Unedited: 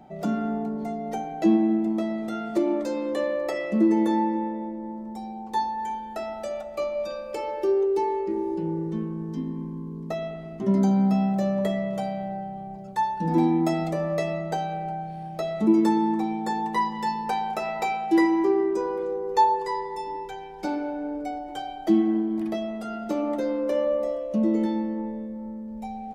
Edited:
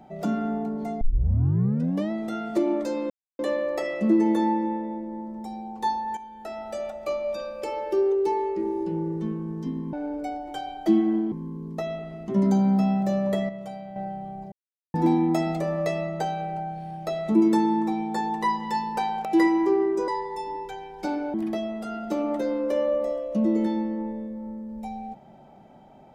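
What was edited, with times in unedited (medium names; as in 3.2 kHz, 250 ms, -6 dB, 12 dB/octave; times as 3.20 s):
1.01 s: tape start 1.10 s
3.10 s: insert silence 0.29 s
5.88–6.50 s: fade in, from -12 dB
11.81–12.28 s: gain -8 dB
12.84–13.26 s: mute
17.57–18.03 s: delete
18.86–19.68 s: delete
20.94–22.33 s: move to 9.64 s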